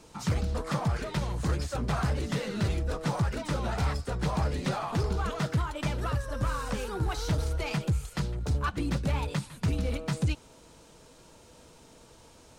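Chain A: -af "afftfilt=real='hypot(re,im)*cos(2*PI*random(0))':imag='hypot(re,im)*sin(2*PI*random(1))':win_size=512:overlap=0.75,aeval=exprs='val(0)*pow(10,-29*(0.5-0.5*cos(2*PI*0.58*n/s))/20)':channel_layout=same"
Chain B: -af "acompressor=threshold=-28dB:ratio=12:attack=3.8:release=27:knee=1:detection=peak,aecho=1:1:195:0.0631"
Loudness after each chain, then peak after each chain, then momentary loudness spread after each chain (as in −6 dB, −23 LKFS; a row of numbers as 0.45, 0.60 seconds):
−42.0, −33.5 LKFS; −23.5, −19.5 dBFS; 22, 2 LU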